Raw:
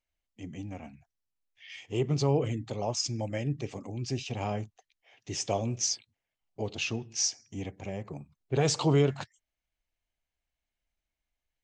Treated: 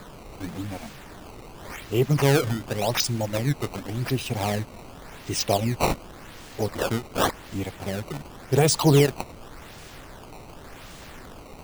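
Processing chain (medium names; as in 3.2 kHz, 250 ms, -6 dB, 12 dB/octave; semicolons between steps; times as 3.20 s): reverb removal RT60 0.58 s; added noise pink -50 dBFS; decimation with a swept rate 15×, swing 160% 0.89 Hz; trim +7.5 dB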